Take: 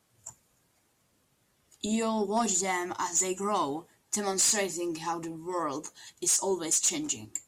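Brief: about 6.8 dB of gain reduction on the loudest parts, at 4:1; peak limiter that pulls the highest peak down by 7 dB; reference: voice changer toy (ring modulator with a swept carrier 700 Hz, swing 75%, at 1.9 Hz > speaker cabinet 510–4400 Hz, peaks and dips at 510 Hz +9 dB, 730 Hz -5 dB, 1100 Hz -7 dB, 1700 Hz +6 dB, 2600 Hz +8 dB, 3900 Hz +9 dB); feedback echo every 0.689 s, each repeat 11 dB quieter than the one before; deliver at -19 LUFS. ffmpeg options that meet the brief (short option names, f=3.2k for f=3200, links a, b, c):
-af "acompressor=threshold=-30dB:ratio=4,alimiter=level_in=2dB:limit=-24dB:level=0:latency=1,volume=-2dB,aecho=1:1:689|1378|2067:0.282|0.0789|0.0221,aeval=exprs='val(0)*sin(2*PI*700*n/s+700*0.75/1.9*sin(2*PI*1.9*n/s))':c=same,highpass=510,equalizer=f=510:t=q:w=4:g=9,equalizer=f=730:t=q:w=4:g=-5,equalizer=f=1.1k:t=q:w=4:g=-7,equalizer=f=1.7k:t=q:w=4:g=6,equalizer=f=2.6k:t=q:w=4:g=8,equalizer=f=3.9k:t=q:w=4:g=9,lowpass=f=4.4k:w=0.5412,lowpass=f=4.4k:w=1.3066,volume=19.5dB"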